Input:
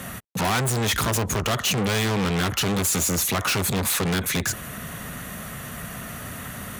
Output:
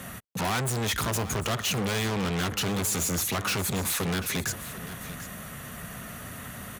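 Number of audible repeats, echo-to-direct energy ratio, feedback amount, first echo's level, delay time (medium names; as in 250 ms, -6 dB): 1, -14.0 dB, no regular repeats, -14.0 dB, 744 ms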